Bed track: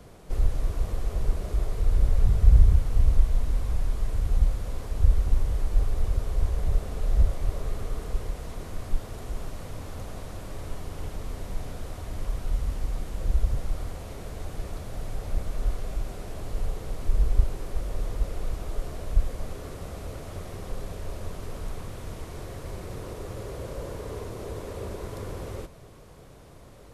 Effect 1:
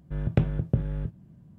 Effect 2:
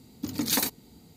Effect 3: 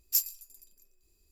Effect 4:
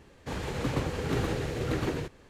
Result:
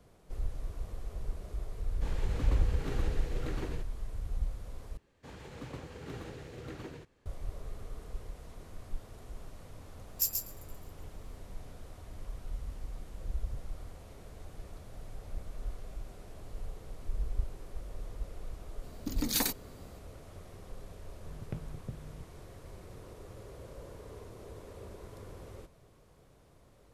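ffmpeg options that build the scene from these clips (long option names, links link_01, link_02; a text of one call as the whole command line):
ffmpeg -i bed.wav -i cue0.wav -i cue1.wav -i cue2.wav -i cue3.wav -filter_complex "[4:a]asplit=2[link_01][link_02];[0:a]volume=-12dB[link_03];[3:a]aecho=1:1:132:0.531[link_04];[link_03]asplit=2[link_05][link_06];[link_05]atrim=end=4.974[link_07];[link_02]atrim=end=2.29,asetpts=PTS-STARTPTS,volume=-14dB[link_08];[link_06]atrim=start=7.256[link_09];[link_01]atrim=end=2.29,asetpts=PTS-STARTPTS,volume=-9.5dB,afade=type=in:duration=0.004:curve=hsin,afade=type=out:start_time=2.286:duration=0.004:curve=hsin,adelay=1750[link_10];[link_04]atrim=end=1.31,asetpts=PTS-STARTPTS,volume=-4dB,afade=type=in:duration=0.004:curve=hsin,afade=type=out:start_time=1.306:duration=0.004:curve=hsin,adelay=10070[link_11];[2:a]atrim=end=1.16,asetpts=PTS-STARTPTS,volume=-4.5dB,afade=type=in:duration=0.004:curve=hsin,afade=type=out:start_time=1.156:duration=0.004:curve=hsin,adelay=18830[link_12];[1:a]atrim=end=1.58,asetpts=PTS-STARTPTS,volume=-17.5dB,afade=type=in:duration=0.004:curve=hsin,afade=type=out:start_time=1.576:duration=0.004:curve=hsin,adelay=21150[link_13];[link_07][link_08]acrossfade=duration=0.004:curve1=hsin:curve2=hsin[link_14];[link_14][link_09]acrossfade=duration=0.004:curve1=hsin:curve2=hsin[link_15];[link_15][link_10][link_11][link_12][link_13]amix=inputs=5:normalize=0" out.wav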